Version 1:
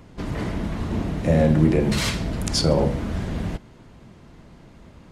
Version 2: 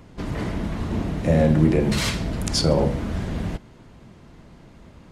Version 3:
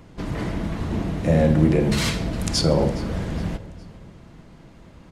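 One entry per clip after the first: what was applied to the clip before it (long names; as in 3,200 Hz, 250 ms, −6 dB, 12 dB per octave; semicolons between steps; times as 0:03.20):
no processing that can be heard
repeating echo 413 ms, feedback 41%, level −20.5 dB; on a send at −14 dB: convolution reverb RT60 1.6 s, pre-delay 6 ms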